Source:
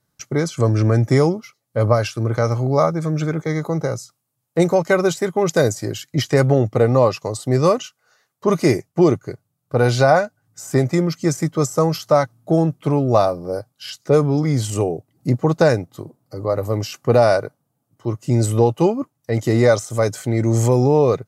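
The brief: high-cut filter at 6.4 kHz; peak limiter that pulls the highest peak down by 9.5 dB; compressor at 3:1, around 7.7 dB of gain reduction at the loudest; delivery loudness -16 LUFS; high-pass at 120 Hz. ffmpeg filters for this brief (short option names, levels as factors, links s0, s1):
-af "highpass=120,lowpass=6400,acompressor=threshold=0.1:ratio=3,volume=3.98,alimiter=limit=0.596:level=0:latency=1"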